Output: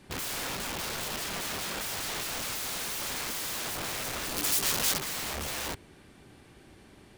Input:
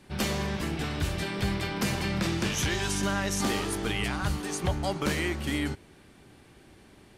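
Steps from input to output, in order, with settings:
stylus tracing distortion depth 0.036 ms
wrap-around overflow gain 30 dB
0:04.36–0:04.99: high-shelf EQ 3,400 Hz → 2,200 Hz +11.5 dB

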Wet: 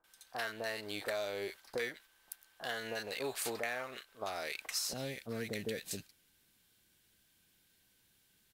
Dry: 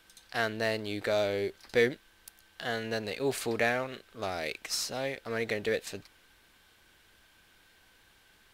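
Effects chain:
first-order pre-emphasis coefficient 0.8
noise gate −54 dBFS, range −7 dB
parametric band 1,000 Hz +12.5 dB 2.3 octaves, from 0:04.93 160 Hz
downward compressor 4 to 1, threshold −38 dBFS, peak gain reduction 11 dB
multiband delay without the direct sound lows, highs 40 ms, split 1,100 Hz
level +3.5 dB

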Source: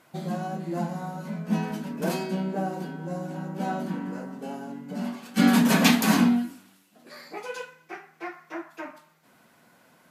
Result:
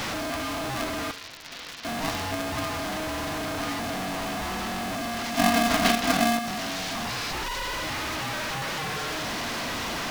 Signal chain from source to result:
linear delta modulator 32 kbit/s, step −21.5 dBFS
0:01.11–0:01.85: resonant band-pass 3,700 Hz, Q 0.91
ring modulator with a square carrier 470 Hz
level −3 dB

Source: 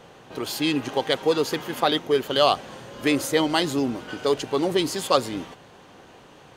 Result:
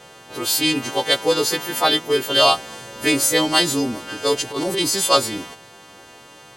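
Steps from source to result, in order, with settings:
every partial snapped to a pitch grid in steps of 2 semitones
0:04.42–0:05.01: transient designer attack −12 dB, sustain +1 dB
level +2.5 dB

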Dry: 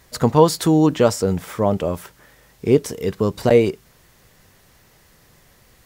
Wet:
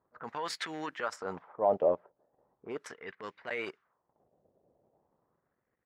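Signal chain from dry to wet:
low-pass that shuts in the quiet parts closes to 380 Hz, open at −13 dBFS
harmonic and percussive parts rebalanced percussive +5 dB
brickwall limiter −9.5 dBFS, peak gain reduction 11.5 dB
transient designer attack −8 dB, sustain −12 dB
LFO wah 0.38 Hz 600–2,000 Hz, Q 2.5

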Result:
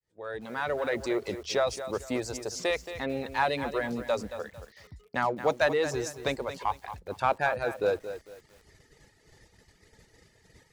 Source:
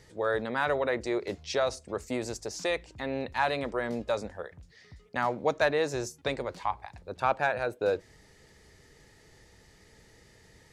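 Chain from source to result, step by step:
fade in at the beginning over 1.07 s
reverb reduction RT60 0.87 s
noise gate −59 dBFS, range −6 dB
in parallel at −8 dB: soft clipping −30.5 dBFS, distortion −7 dB
on the sum: feedback echo at a low word length 224 ms, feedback 35%, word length 8 bits, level −11 dB

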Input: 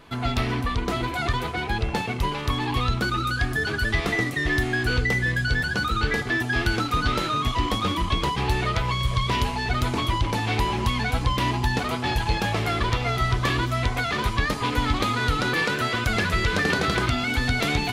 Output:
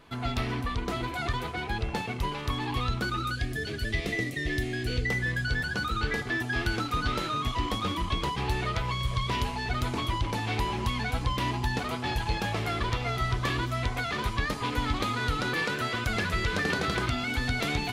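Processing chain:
0:03.35–0:05.06: flat-topped bell 1,100 Hz −11.5 dB 1.2 octaves
level −5.5 dB

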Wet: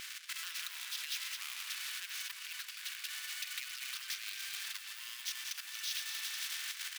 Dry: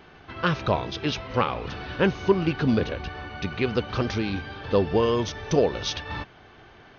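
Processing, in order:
feedback delay that plays each chunk backwards 138 ms, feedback 60%, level −12.5 dB
high-shelf EQ 4,500 Hz −5 dB
reversed playback
upward compression, threshold −29 dBFS
reversed playback
leveller curve on the samples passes 2
repeating echo 230 ms, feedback 49%, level −16.5 dB
on a send at −16.5 dB: convolution reverb RT60 2.4 s, pre-delay 7 ms
on the sum: brickwall limiter −18 dBFS, peak gain reduction 12 dB
output level in coarse steps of 11 dB
Butterworth high-pass 1,800 Hz 36 dB per octave
spectral tilt +3.5 dB per octave
every bin compressed towards the loudest bin 2 to 1
level +4 dB

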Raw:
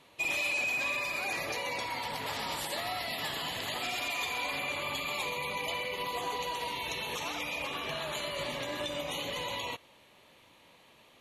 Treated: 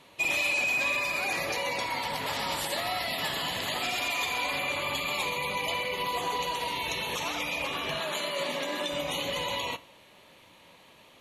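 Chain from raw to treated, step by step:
0:08.00–0:08.92: Butterworth high-pass 170 Hz 36 dB per octave
convolution reverb RT60 0.55 s, pre-delay 3 ms, DRR 13.5 dB
level +4 dB

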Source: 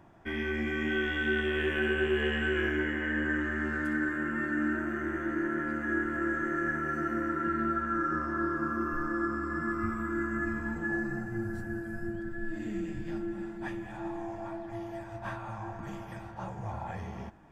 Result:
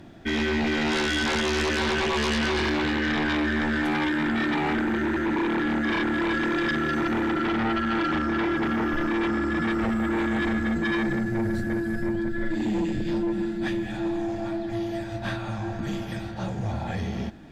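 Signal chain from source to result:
graphic EQ with 15 bands 250 Hz +6 dB, 1,000 Hz −11 dB, 4,000 Hz +12 dB
sine wavefolder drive 11 dB, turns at −16.5 dBFS
level −5 dB

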